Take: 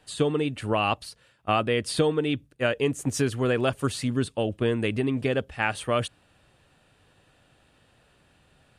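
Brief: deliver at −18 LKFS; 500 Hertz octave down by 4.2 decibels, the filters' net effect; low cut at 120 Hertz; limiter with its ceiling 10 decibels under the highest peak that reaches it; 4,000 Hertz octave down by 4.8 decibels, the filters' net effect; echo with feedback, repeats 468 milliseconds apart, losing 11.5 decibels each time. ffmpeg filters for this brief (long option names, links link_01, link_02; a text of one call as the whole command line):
ffmpeg -i in.wav -af "highpass=120,equalizer=frequency=500:width_type=o:gain=-5,equalizer=frequency=4000:width_type=o:gain=-7,alimiter=limit=-21dB:level=0:latency=1,aecho=1:1:468|936|1404:0.266|0.0718|0.0194,volume=14.5dB" out.wav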